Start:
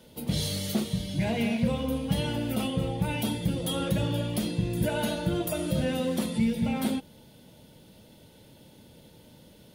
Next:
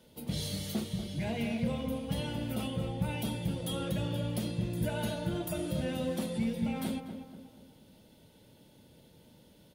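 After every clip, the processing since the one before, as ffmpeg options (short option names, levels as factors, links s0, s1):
-filter_complex "[0:a]asplit=2[s0][s1];[s1]adelay=241,lowpass=f=1700:p=1,volume=0.398,asplit=2[s2][s3];[s3]adelay=241,lowpass=f=1700:p=1,volume=0.45,asplit=2[s4][s5];[s5]adelay=241,lowpass=f=1700:p=1,volume=0.45,asplit=2[s6][s7];[s7]adelay=241,lowpass=f=1700:p=1,volume=0.45,asplit=2[s8][s9];[s9]adelay=241,lowpass=f=1700:p=1,volume=0.45[s10];[s0][s2][s4][s6][s8][s10]amix=inputs=6:normalize=0,volume=0.473"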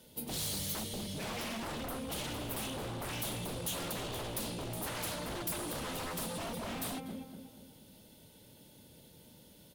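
-af "aeval=exprs='0.0178*(abs(mod(val(0)/0.0178+3,4)-2)-1)':c=same,aemphasis=mode=production:type=cd"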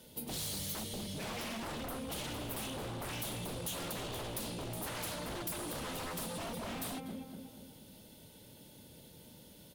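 -af "acompressor=threshold=0.00501:ratio=1.5,volume=1.26"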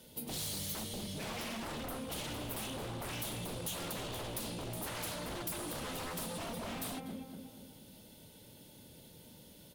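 -af "bandreject=f=67.62:t=h:w=4,bandreject=f=135.24:t=h:w=4,bandreject=f=202.86:t=h:w=4,bandreject=f=270.48:t=h:w=4,bandreject=f=338.1:t=h:w=4,bandreject=f=405.72:t=h:w=4,bandreject=f=473.34:t=h:w=4,bandreject=f=540.96:t=h:w=4,bandreject=f=608.58:t=h:w=4,bandreject=f=676.2:t=h:w=4,bandreject=f=743.82:t=h:w=4,bandreject=f=811.44:t=h:w=4,bandreject=f=879.06:t=h:w=4,bandreject=f=946.68:t=h:w=4,bandreject=f=1014.3:t=h:w=4,bandreject=f=1081.92:t=h:w=4,bandreject=f=1149.54:t=h:w=4,bandreject=f=1217.16:t=h:w=4,bandreject=f=1284.78:t=h:w=4,bandreject=f=1352.4:t=h:w=4,bandreject=f=1420.02:t=h:w=4,bandreject=f=1487.64:t=h:w=4,bandreject=f=1555.26:t=h:w=4,bandreject=f=1622.88:t=h:w=4,bandreject=f=1690.5:t=h:w=4,bandreject=f=1758.12:t=h:w=4,bandreject=f=1825.74:t=h:w=4,bandreject=f=1893.36:t=h:w=4"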